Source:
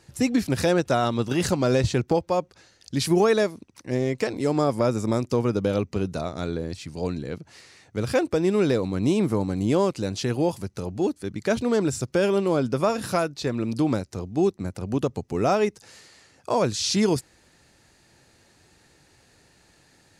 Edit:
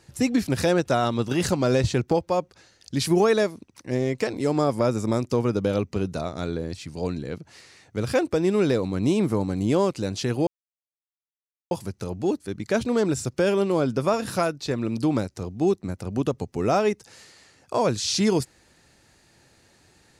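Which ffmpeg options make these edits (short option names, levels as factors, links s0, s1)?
-filter_complex "[0:a]asplit=2[s0][s1];[s0]atrim=end=10.47,asetpts=PTS-STARTPTS,afade=t=out:st=10.466:d=0.004:c=hsin,apad=pad_dur=1.24[s2];[s1]atrim=start=10.47,asetpts=PTS-STARTPTS,afade=t=in:d=0.004:c=hsin[s3];[s2][s3]concat=n=2:v=0:a=1"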